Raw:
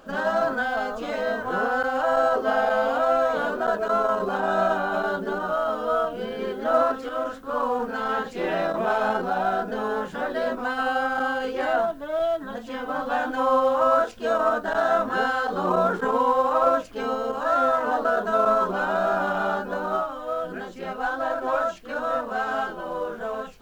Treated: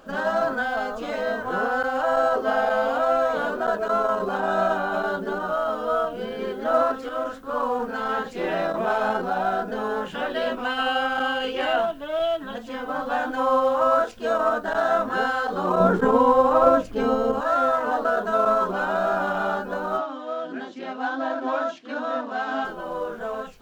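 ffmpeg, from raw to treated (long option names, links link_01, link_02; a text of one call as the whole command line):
ffmpeg -i in.wav -filter_complex "[0:a]asettb=1/sr,asplit=3[link_01][link_02][link_03];[link_01]atrim=end=10.064[link_04];[link_02]atrim=start=10.06:end=12.58,asetpts=PTS-STARTPTS,afade=type=in:duration=0.004:curve=qsin,afade=type=out:start_time=2.516:duration=0.004:curve=qsin,equalizer=frequency=2900:width=2.6:gain=11.5[link_05];[link_03]atrim=start=12.576[link_06];[link_04][link_05]acrossfade=duration=0.004:curve1=hsin:curve2=qsin[link_07];[link_07][link_06]acrossfade=duration=0.004:curve1=qsin:curve2=hsin,asettb=1/sr,asplit=3[link_08][link_09][link_10];[link_08]atrim=end=15.804[link_11];[link_09]atrim=start=15.8:end=17.41,asetpts=PTS-STARTPTS,afade=type=in:duration=0.004:curve=qsin,afade=type=out:start_time=1.606:duration=0.004:curve=qsin,lowshelf=frequency=470:gain=11[link_12];[link_10]atrim=start=17.406[link_13];[link_11][link_12]acrossfade=duration=0.004:curve1=hsin:curve2=qsin[link_14];[link_14][link_13]acrossfade=duration=0.004:curve1=qsin:curve2=hsin,asettb=1/sr,asplit=3[link_15][link_16][link_17];[link_15]atrim=end=19.984[link_18];[link_16]atrim=start=19.98:end=22.65,asetpts=PTS-STARTPTS,afade=type=in:duration=0.004:curve=qsin,afade=type=out:start_time=2.666:duration=0.004:curve=qsin,highpass=frequency=170:width=0.5412,highpass=frequency=170:width=1.3066,equalizer=frequency=190:width_type=q:width=4:gain=-10,equalizer=frequency=270:width_type=q:width=4:gain=10,equalizer=frequency=460:width_type=q:width=4:gain=-6,equalizer=frequency=1300:width_type=q:width=4:gain=-3,equalizer=frequency=3500:width_type=q:width=4:gain=4,lowpass=frequency=6400:width=0.5412,lowpass=frequency=6400:width=1.3066[link_19];[link_17]atrim=start=22.646[link_20];[link_18][link_19]acrossfade=duration=0.004:curve1=hsin:curve2=qsin[link_21];[link_21][link_20]acrossfade=duration=0.004:curve1=qsin:curve2=hsin" out.wav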